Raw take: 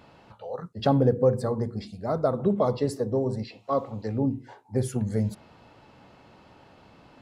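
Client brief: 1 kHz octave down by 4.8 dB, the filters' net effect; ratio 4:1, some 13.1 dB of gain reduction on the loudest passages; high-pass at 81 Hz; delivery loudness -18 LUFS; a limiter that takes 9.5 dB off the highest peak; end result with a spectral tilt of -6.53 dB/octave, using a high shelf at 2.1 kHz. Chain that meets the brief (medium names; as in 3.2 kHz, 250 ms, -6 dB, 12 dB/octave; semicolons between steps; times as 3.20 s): high-pass 81 Hz; peaking EQ 1 kHz -8 dB; treble shelf 2.1 kHz +5.5 dB; compression 4:1, threshold -34 dBFS; trim +22.5 dB; peak limiter -7 dBFS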